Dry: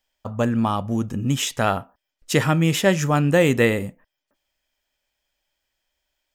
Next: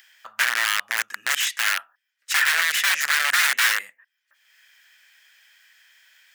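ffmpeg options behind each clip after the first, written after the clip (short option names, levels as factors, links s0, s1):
-af "aeval=exprs='(mod(6.68*val(0)+1,2)-1)/6.68':c=same,highpass=f=1700:t=q:w=3.5,acompressor=mode=upward:threshold=0.01:ratio=2.5"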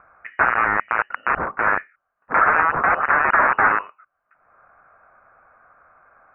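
-af "lowpass=f=2600:t=q:w=0.5098,lowpass=f=2600:t=q:w=0.6013,lowpass=f=2600:t=q:w=0.9,lowpass=f=2600:t=q:w=2.563,afreqshift=-3100,volume=1.78"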